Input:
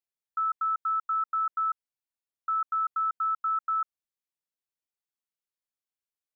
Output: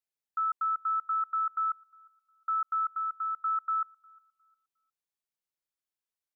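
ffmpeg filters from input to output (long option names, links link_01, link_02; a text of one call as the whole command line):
ffmpeg -i in.wav -filter_complex "[0:a]asettb=1/sr,asplit=3[link_01][link_02][link_03];[link_01]atrim=end=2.914[link_04];[link_02]atrim=start=2.91:end=3.44,asetpts=PTS-STARTPTS,afade=type=in:duration=0.004:curve=qsin,afade=type=out:start_time=0.526:duration=0.004:curve=qsin,equalizer=frequency=1000:width_type=o:width=0.74:gain=-6.5[link_05];[link_03]atrim=start=3.436[link_06];[link_04][link_05]acrossfade=duration=0.004:curve1=hsin:curve2=qsin[link_07];[link_07][link_06]acrossfade=duration=0.004:curve1=qsin:curve2=hsin,asplit=2[link_08][link_09];[link_09]adelay=357,lowpass=frequency=1000:poles=1,volume=-23dB,asplit=2[link_10][link_11];[link_11]adelay=357,lowpass=frequency=1000:poles=1,volume=0.41,asplit=2[link_12][link_13];[link_13]adelay=357,lowpass=frequency=1000:poles=1,volume=0.41[link_14];[link_08][link_10][link_12][link_14]amix=inputs=4:normalize=0,volume=-1.5dB" out.wav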